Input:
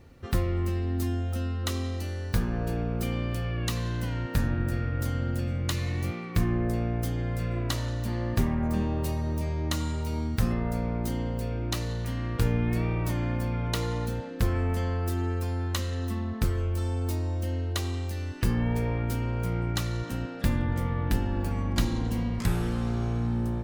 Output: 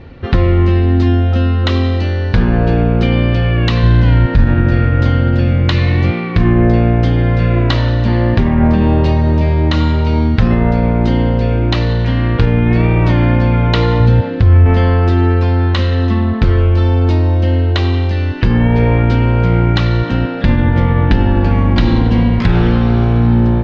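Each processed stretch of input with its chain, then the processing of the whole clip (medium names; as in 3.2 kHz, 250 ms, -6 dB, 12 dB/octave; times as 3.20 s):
3.83–4.46 s: bass shelf 110 Hz +10 dB + band-stop 2.8 kHz, Q 24
14.00–14.66 s: peaking EQ 94 Hz +13.5 dB 0.75 oct + compression, threshold -19 dBFS
whole clip: inverse Chebyshev low-pass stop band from 11 kHz, stop band 60 dB; band-stop 1.2 kHz, Q 18; loudness maximiser +18.5 dB; trim -1 dB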